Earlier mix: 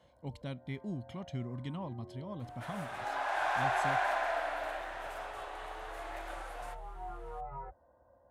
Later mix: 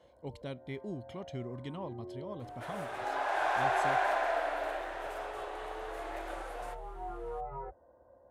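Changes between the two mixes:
speech: add peaking EQ 200 Hz -5 dB 2.3 oct; master: add peaking EQ 410 Hz +9 dB 0.95 oct

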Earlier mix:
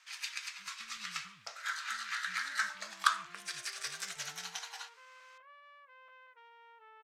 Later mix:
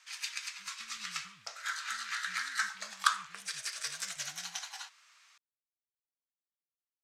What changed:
second sound: muted; master: add peaking EQ 7.8 kHz +4 dB 1.5 oct

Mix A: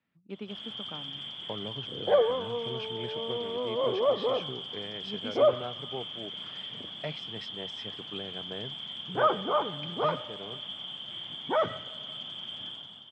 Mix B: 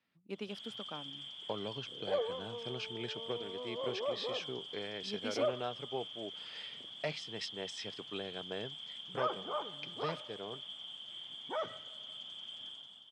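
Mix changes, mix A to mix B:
background -11.0 dB; master: add tone controls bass -6 dB, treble +13 dB

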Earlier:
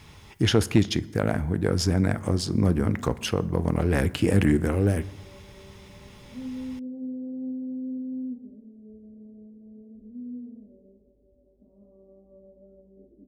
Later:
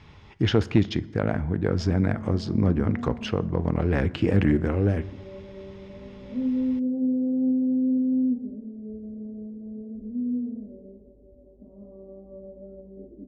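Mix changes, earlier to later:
background +10.0 dB; master: add distance through air 180 m

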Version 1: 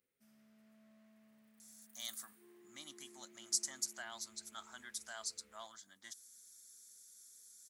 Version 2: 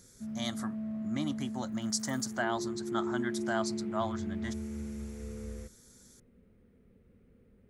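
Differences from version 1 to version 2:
speech: entry -1.60 s; master: remove differentiator

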